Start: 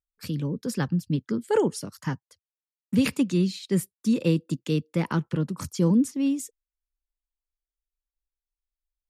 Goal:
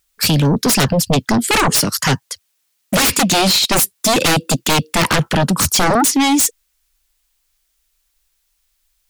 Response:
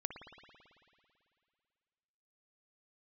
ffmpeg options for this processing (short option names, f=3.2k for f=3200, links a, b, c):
-af "tiltshelf=f=1.2k:g=-6,aeval=exprs='0.316*sin(PI/2*10*val(0)/0.316)':c=same"